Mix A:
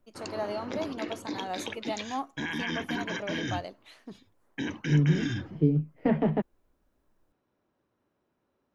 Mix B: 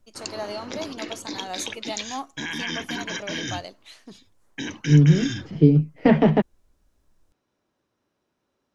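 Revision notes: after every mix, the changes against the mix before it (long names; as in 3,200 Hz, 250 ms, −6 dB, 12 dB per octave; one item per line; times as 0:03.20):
second voice +8.5 dB
master: add parametric band 6,600 Hz +11.5 dB 2.2 octaves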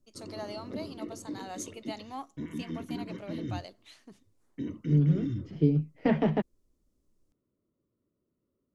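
first voice −7.5 dB
second voice −9.0 dB
background: add moving average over 54 samples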